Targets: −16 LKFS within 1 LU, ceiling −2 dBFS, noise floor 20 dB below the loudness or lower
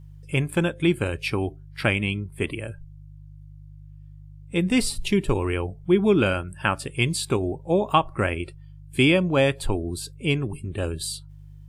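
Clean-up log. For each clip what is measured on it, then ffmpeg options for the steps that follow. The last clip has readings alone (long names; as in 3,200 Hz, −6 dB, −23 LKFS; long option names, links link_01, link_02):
mains hum 50 Hz; hum harmonics up to 150 Hz; level of the hum −41 dBFS; integrated loudness −24.5 LKFS; sample peak −6.5 dBFS; target loudness −16.0 LKFS
→ -af "bandreject=frequency=50:width_type=h:width=4,bandreject=frequency=100:width_type=h:width=4,bandreject=frequency=150:width_type=h:width=4"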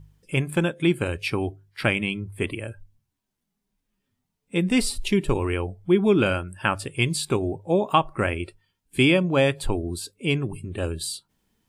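mains hum none found; integrated loudness −24.5 LKFS; sample peak −6.0 dBFS; target loudness −16.0 LKFS
→ -af "volume=8.5dB,alimiter=limit=-2dB:level=0:latency=1"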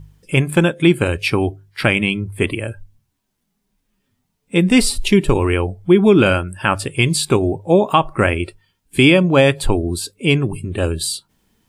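integrated loudness −16.5 LKFS; sample peak −2.0 dBFS; background noise floor −72 dBFS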